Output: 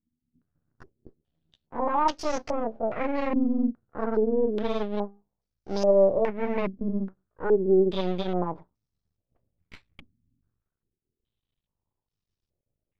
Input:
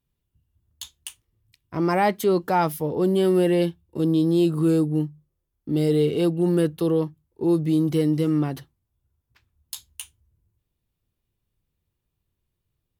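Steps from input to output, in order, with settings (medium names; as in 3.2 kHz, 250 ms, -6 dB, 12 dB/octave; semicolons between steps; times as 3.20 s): pitch bend over the whole clip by +8.5 st ending unshifted; half-wave rectifier; step-sequenced low-pass 2.4 Hz 250–5400 Hz; trim -3.5 dB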